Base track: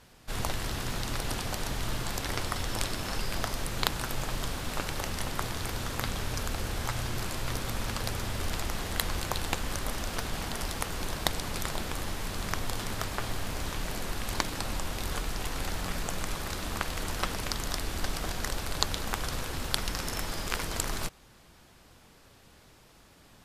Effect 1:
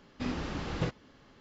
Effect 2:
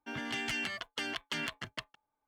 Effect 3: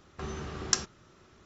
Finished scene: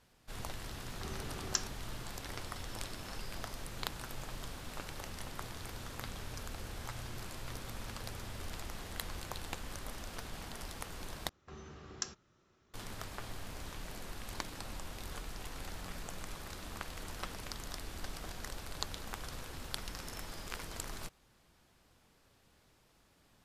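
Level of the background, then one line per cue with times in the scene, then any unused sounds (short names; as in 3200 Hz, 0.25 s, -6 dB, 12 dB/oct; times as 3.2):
base track -11 dB
0.82 add 3 -7.5 dB
11.29 replace with 3 -12.5 dB
not used: 1, 2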